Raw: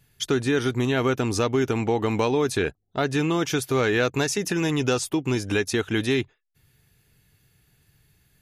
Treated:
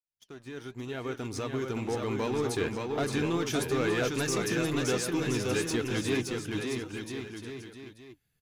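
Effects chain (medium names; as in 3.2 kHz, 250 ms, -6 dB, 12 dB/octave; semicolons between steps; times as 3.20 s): fade-in on the opening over 2.77 s; waveshaping leveller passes 2; on a send: bouncing-ball echo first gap 570 ms, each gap 0.8×, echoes 5; on the sum: flange 1 Hz, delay 1.2 ms, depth 6.9 ms, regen +80%; trim -8 dB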